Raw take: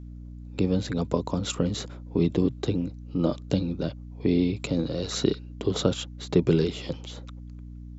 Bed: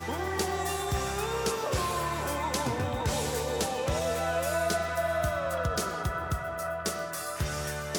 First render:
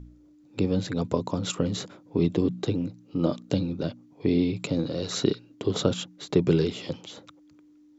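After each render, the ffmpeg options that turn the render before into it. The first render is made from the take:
-af "bandreject=f=60:t=h:w=4,bandreject=f=120:t=h:w=4,bandreject=f=180:t=h:w=4,bandreject=f=240:t=h:w=4"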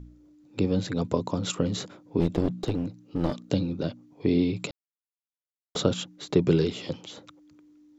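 -filter_complex "[0:a]asplit=3[a][b][c];[a]afade=t=out:st=2.19:d=0.02[d];[b]aeval=exprs='clip(val(0),-1,0.0376)':c=same,afade=t=in:st=2.19:d=0.02,afade=t=out:st=3.49:d=0.02[e];[c]afade=t=in:st=3.49:d=0.02[f];[d][e][f]amix=inputs=3:normalize=0,asplit=3[g][h][i];[g]atrim=end=4.71,asetpts=PTS-STARTPTS,afade=t=out:st=4.706:d=0.004:c=hsin[j];[h]atrim=start=4.71:end=5.75,asetpts=PTS-STARTPTS,volume=0[k];[i]atrim=start=5.75,asetpts=PTS-STARTPTS,afade=t=in:d=0.004:c=hsin[l];[j][k][l]concat=n=3:v=0:a=1"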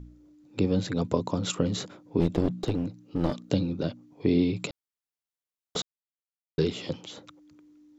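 -filter_complex "[0:a]asplit=3[a][b][c];[a]atrim=end=5.82,asetpts=PTS-STARTPTS,afade=t=out:st=5.816:d=0.004:c=hsin[d];[b]atrim=start=5.82:end=6.58,asetpts=PTS-STARTPTS,volume=0[e];[c]atrim=start=6.58,asetpts=PTS-STARTPTS,afade=t=in:d=0.004:c=hsin[f];[d][e][f]concat=n=3:v=0:a=1"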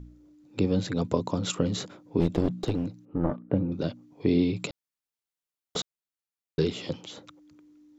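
-filter_complex "[0:a]asettb=1/sr,asplit=3[a][b][c];[a]atrim=end=3.054[d];[b]atrim=start=3.05:end=3.72,asetpts=PTS-STARTPTS,afade=t=in:d=0.004:c=qsin,afade=t=out:st=0.666:d=0.004:c=qsin,lowpass=f=1.7k:w=0.5412,lowpass=f=1.7k:w=1.3066[e];[c]atrim=start=3.716[f];[d][e]acrossfade=d=0.004:c1=hsin:c2=qsin[g];[g][f]acrossfade=d=0.004:c1=qsin:c2=hsin"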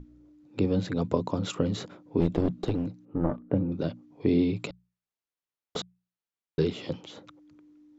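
-af "lowpass=f=3k:p=1,bandreject=f=60:t=h:w=6,bandreject=f=120:t=h:w=6,bandreject=f=180:t=h:w=6"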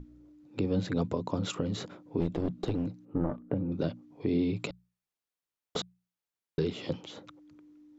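-af "alimiter=limit=-18dB:level=0:latency=1:release=264"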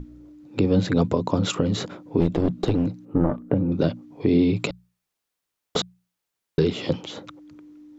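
-af "volume=9.5dB"

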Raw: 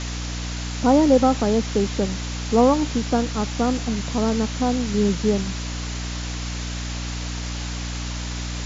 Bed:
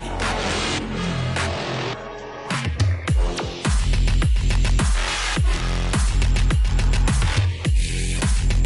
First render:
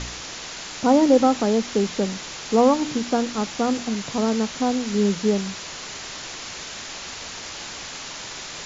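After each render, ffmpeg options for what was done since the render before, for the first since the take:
-af "bandreject=f=60:t=h:w=4,bandreject=f=120:t=h:w=4,bandreject=f=180:t=h:w=4,bandreject=f=240:t=h:w=4,bandreject=f=300:t=h:w=4"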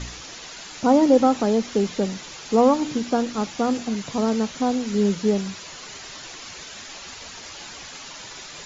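-af "afftdn=nr=8:nf=-36"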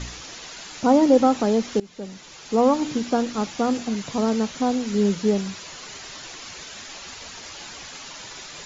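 -filter_complex "[0:a]asplit=2[a][b];[a]atrim=end=1.8,asetpts=PTS-STARTPTS,afade=t=out:st=1.796:d=0.004:c=hsin:silence=0.0841395[c];[b]atrim=start=1.8,asetpts=PTS-STARTPTS,afade=t=in:d=1.03:silence=0.0841395[d];[c][d]concat=n=2:v=0:a=1"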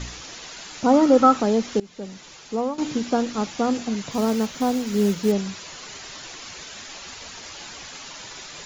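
-filter_complex "[0:a]asettb=1/sr,asplit=3[a][b][c];[a]atrim=end=0.934[d];[b]atrim=start=0.93:end=1.4,asetpts=PTS-STARTPTS,afade=t=in:d=0.004:c=qsin,afade=t=out:st=0.466:d=0.004:c=qsin,equalizer=f=1.3k:t=o:w=0.32:g=13[e];[c]atrim=start=1.396[f];[d][e]acrossfade=d=0.004:c1=hsin:c2=qsin[g];[g][f]acrossfade=d=0.004:c1=qsin:c2=hsin,asettb=1/sr,asplit=3[h][i][j];[h]atrim=end=4.114[k];[i]atrim=start=4.11:end=5.32,asetpts=PTS-STARTPTS,afade=t=in:d=0.004:c=qsin,afade=t=out:st=1.206:d=0.004:c=qsin,acrusher=bits=5:mode=log:mix=0:aa=0.000001[l];[j]atrim=start=5.316[m];[k][l]acrossfade=d=0.004:c1=hsin:c2=qsin[n];[n][m]acrossfade=d=0.004:c1=qsin:c2=hsin,asplit=2[o][p];[o]atrim=end=2.78,asetpts=PTS-STARTPTS,afade=t=out:st=2.28:d=0.5:silence=0.199526[q];[p]atrim=start=2.78,asetpts=PTS-STARTPTS,afade=t=in:d=0.004:c=hsin:silence=0.199526[r];[q][r]concat=n=2:v=0:a=1"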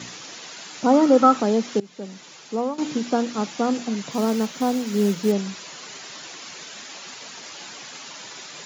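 -af "highpass=f=140:w=0.5412,highpass=f=140:w=1.3066"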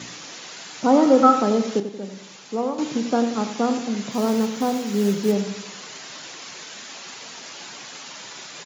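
-filter_complex "[0:a]asplit=2[a][b];[b]adelay=30,volume=-13dB[c];[a][c]amix=inputs=2:normalize=0,asplit=2[d][e];[e]adelay=90,lowpass=f=3.5k:p=1,volume=-10dB,asplit=2[f][g];[g]adelay=90,lowpass=f=3.5k:p=1,volume=0.5,asplit=2[h][i];[i]adelay=90,lowpass=f=3.5k:p=1,volume=0.5,asplit=2[j][k];[k]adelay=90,lowpass=f=3.5k:p=1,volume=0.5,asplit=2[l][m];[m]adelay=90,lowpass=f=3.5k:p=1,volume=0.5[n];[f][h][j][l][n]amix=inputs=5:normalize=0[o];[d][o]amix=inputs=2:normalize=0"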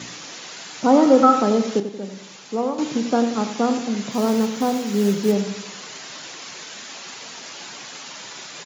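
-af "volume=1.5dB,alimiter=limit=-3dB:level=0:latency=1"

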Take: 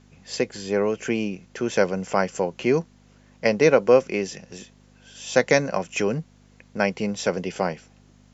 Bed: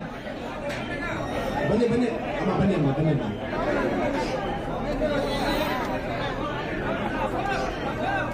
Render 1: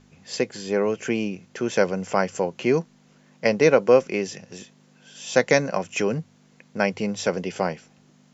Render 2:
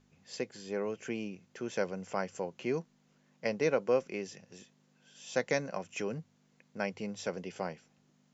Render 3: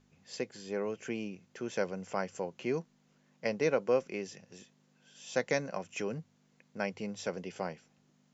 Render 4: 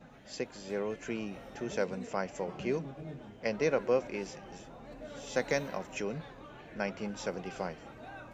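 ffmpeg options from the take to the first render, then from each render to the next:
-af "bandreject=f=50:t=h:w=4,bandreject=f=100:t=h:w=4"
-af "volume=-12.5dB"
-af anull
-filter_complex "[1:a]volume=-21dB[a];[0:a][a]amix=inputs=2:normalize=0"

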